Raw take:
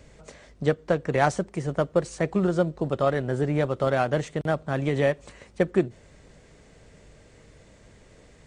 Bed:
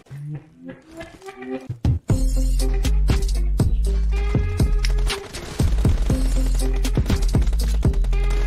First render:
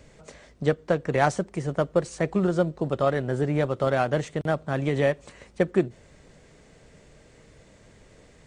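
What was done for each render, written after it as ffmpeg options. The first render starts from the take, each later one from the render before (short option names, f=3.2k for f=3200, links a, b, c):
-af "bandreject=f=50:t=h:w=4,bandreject=f=100:t=h:w=4"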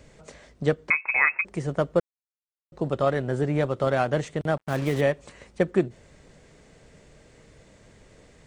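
-filter_complex "[0:a]asettb=1/sr,asplit=3[a][b][c];[a]atrim=end=0.904[d];[b]atrim=start=0.9:end=1.45,asetpts=PTS-STARTPTS,afade=t=in:d=0.004:c=qsin,afade=t=out:st=0.546:d=0.004:c=qsin,lowpass=f=2.3k:t=q:w=0.5098,lowpass=f=2.3k:t=q:w=0.6013,lowpass=f=2.3k:t=q:w=0.9,lowpass=f=2.3k:t=q:w=2.563,afreqshift=-2700[e];[c]atrim=start=1.446[f];[d][e]acrossfade=d=0.004:c1=hsin:c2=qsin[g];[g][f]acrossfade=d=0.004:c1=qsin:c2=hsin,asettb=1/sr,asplit=3[h][i][j];[h]atrim=end=4.574[k];[i]atrim=start=4.57:end=5.01,asetpts=PTS-STARTPTS,afade=t=in:d=0.004:c=qsin,afade=t=out:st=0.436:d=0.004:c=qsin,acrusher=bits=5:mix=0:aa=0.5[l];[j]atrim=start=5.006[m];[k][l]acrossfade=d=0.004:c1=hsin:c2=qsin[n];[n][m]acrossfade=d=0.004:c1=qsin:c2=hsin,asplit=3[o][p][q];[o]atrim=end=2,asetpts=PTS-STARTPTS,afade=t=out:st=1.996:d=0.004:c=hsin[r];[p]atrim=start=2:end=2.72,asetpts=PTS-STARTPTS,volume=0[s];[q]atrim=start=2.72,asetpts=PTS-STARTPTS,afade=t=in:d=0.004:c=hsin[t];[r][s][t]concat=n=3:v=0:a=1"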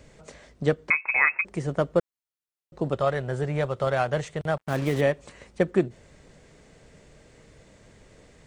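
-filter_complex "[0:a]asettb=1/sr,asplit=3[a][b][c];[a]atrim=end=2.954[d];[b]atrim=start=2.95:end=4.61,asetpts=PTS-STARTPTS,afade=t=in:d=0.004:c=qsin,afade=t=out:st=1.656:d=0.004:c=qsin,equalizer=f=280:t=o:w=0.77:g=-9.5[e];[c]atrim=start=4.606[f];[d][e]acrossfade=d=0.004:c1=hsin:c2=qsin[g];[g][f]acrossfade=d=0.004:c1=qsin:c2=hsin"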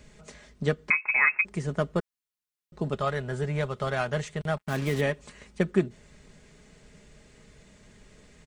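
-af "equalizer=f=590:t=o:w=1.6:g=-6,aecho=1:1:4.8:0.41"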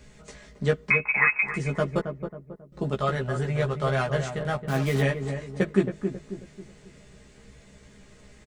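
-filter_complex "[0:a]asplit=2[a][b];[b]adelay=15,volume=-3dB[c];[a][c]amix=inputs=2:normalize=0,asplit=2[d][e];[e]adelay=271,lowpass=f=1k:p=1,volume=-6.5dB,asplit=2[f][g];[g]adelay=271,lowpass=f=1k:p=1,volume=0.43,asplit=2[h][i];[i]adelay=271,lowpass=f=1k:p=1,volume=0.43,asplit=2[j][k];[k]adelay=271,lowpass=f=1k:p=1,volume=0.43,asplit=2[l][m];[m]adelay=271,lowpass=f=1k:p=1,volume=0.43[n];[f][h][j][l][n]amix=inputs=5:normalize=0[o];[d][o]amix=inputs=2:normalize=0"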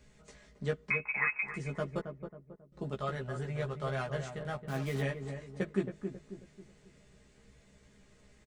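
-af "volume=-10dB"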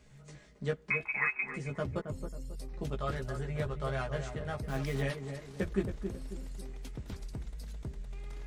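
-filter_complex "[1:a]volume=-22.5dB[a];[0:a][a]amix=inputs=2:normalize=0"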